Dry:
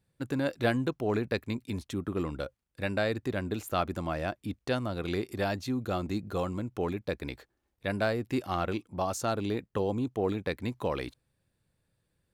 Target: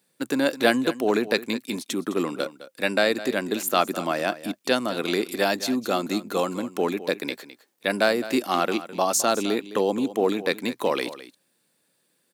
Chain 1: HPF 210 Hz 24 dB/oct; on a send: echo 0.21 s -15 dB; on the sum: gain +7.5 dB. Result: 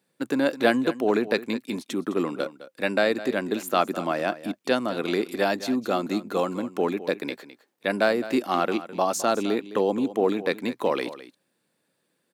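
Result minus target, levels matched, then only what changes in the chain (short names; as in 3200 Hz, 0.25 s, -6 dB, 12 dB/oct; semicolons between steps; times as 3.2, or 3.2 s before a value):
8000 Hz band -7.0 dB
add after HPF: high shelf 3500 Hz +9.5 dB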